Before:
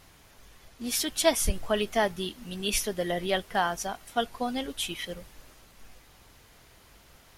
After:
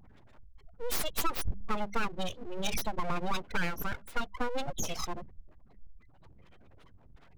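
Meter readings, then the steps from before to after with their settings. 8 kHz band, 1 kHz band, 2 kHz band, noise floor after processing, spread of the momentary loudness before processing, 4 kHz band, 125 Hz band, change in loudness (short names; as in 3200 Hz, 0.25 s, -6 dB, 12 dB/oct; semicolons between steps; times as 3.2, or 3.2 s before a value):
-8.5 dB, -4.5 dB, -4.0 dB, -57 dBFS, 11 LU, -8.5 dB, -1.5 dB, -6.5 dB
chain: spectral gate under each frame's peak -10 dB strong; notches 50/100/150/200 Hz; compressor 3:1, threshold -32 dBFS, peak gain reduction 10.5 dB; full-wave rectifier; gain +5.5 dB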